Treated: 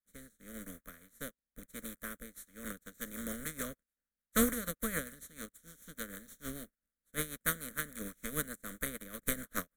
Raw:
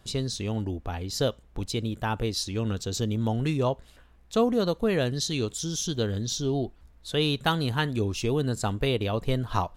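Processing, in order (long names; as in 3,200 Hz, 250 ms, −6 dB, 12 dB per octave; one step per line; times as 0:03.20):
compressing power law on the bin magnitudes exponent 0.33
phaser with its sweep stopped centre 550 Hz, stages 8
rotating-speaker cabinet horn 0.9 Hz, later 6.7 Hz, at 0:02.00
phaser with its sweep stopped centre 2,100 Hz, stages 4
expander for the loud parts 2.5 to 1, over −52 dBFS
level +3.5 dB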